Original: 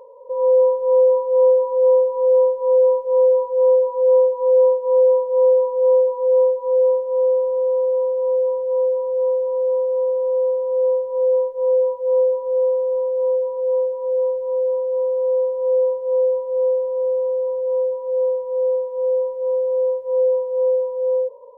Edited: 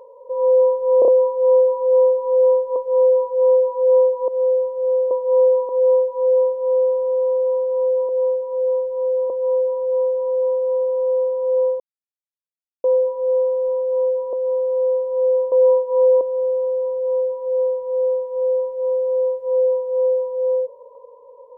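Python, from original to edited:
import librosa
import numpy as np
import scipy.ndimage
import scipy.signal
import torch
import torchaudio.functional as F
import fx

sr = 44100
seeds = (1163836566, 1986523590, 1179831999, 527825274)

y = fx.edit(x, sr, fx.stutter(start_s=0.99, slice_s=0.03, count=4),
    fx.cut(start_s=2.67, length_s=0.28),
    fx.swap(start_s=4.47, length_s=0.69, other_s=16.0, other_length_s=0.83),
    fx.cut(start_s=5.74, length_s=0.43),
    fx.silence(start_s=11.07, length_s=1.04),
    fx.move(start_s=13.6, length_s=1.21, to_s=8.57), tone=tone)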